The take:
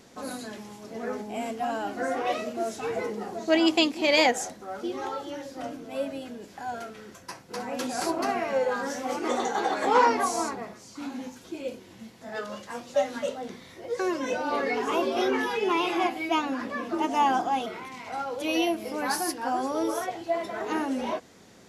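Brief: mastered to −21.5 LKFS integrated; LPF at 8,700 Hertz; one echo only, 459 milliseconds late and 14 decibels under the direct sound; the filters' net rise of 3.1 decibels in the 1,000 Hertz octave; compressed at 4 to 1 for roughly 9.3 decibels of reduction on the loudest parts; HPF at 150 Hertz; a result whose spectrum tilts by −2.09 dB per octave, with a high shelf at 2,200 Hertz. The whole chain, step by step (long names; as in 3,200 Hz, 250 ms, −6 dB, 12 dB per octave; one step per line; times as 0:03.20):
high-pass filter 150 Hz
low-pass filter 8,700 Hz
parametric band 1,000 Hz +5 dB
high-shelf EQ 2,200 Hz −6 dB
downward compressor 4 to 1, threshold −24 dBFS
single-tap delay 459 ms −14 dB
level +9 dB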